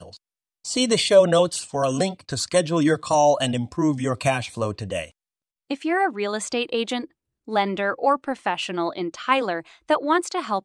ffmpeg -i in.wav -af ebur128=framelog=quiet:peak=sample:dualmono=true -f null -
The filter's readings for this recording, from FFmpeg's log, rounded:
Integrated loudness:
  I:         -19.7 LUFS
  Threshold: -30.0 LUFS
Loudness range:
  LRA:         6.0 LU
  Threshold: -40.4 LUFS
  LRA low:   -23.3 LUFS
  LRA high:  -17.3 LUFS
Sample peak:
  Peak:       -4.6 dBFS